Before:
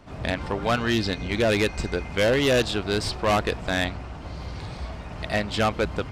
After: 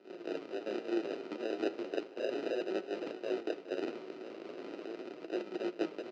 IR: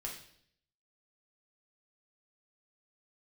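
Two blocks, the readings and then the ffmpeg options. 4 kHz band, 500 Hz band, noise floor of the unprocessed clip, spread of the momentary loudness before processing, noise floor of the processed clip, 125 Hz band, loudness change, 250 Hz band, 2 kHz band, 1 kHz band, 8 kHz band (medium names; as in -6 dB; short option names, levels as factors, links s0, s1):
-20.5 dB, -11.0 dB, -38 dBFS, 15 LU, -51 dBFS, under -30 dB, -14.5 dB, -10.5 dB, -20.0 dB, -18.5 dB, under -20 dB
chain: -filter_complex "[0:a]tiltshelf=f=1100:g=-4.5,areverse,acompressor=threshold=0.0282:ratio=6,areverse,tremolo=f=110:d=0.947,acrusher=samples=40:mix=1:aa=0.000001,flanger=delay=5.3:depth=7.9:regen=62:speed=0.36:shape=sinusoidal,highpass=f=300:w=0.5412,highpass=f=300:w=1.3066,equalizer=f=360:t=q:w=4:g=8,equalizer=f=860:t=q:w=4:g=-10,equalizer=f=1700:t=q:w=4:g=-9,equalizer=f=3500:t=q:w=4:g=-7,lowpass=f=4300:w=0.5412,lowpass=f=4300:w=1.3066,asplit=5[s0][s1][s2][s3][s4];[s1]adelay=250,afreqshift=51,volume=0.1[s5];[s2]adelay=500,afreqshift=102,volume=0.0562[s6];[s3]adelay=750,afreqshift=153,volume=0.0313[s7];[s4]adelay=1000,afreqshift=204,volume=0.0176[s8];[s0][s5][s6][s7][s8]amix=inputs=5:normalize=0,volume=2.24"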